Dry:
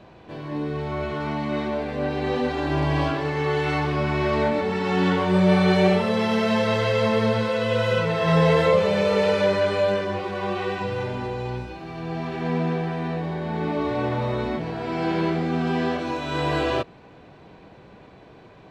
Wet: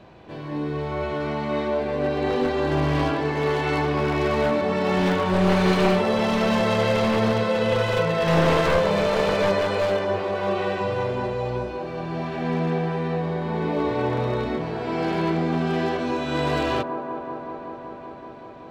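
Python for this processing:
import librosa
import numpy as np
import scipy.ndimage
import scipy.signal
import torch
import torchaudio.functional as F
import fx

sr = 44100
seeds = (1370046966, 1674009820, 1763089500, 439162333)

p1 = np.minimum(x, 2.0 * 10.0 ** (-17.5 / 20.0) - x)
y = p1 + fx.echo_wet_bandpass(p1, sr, ms=190, feedback_pct=83, hz=570.0, wet_db=-7.5, dry=0)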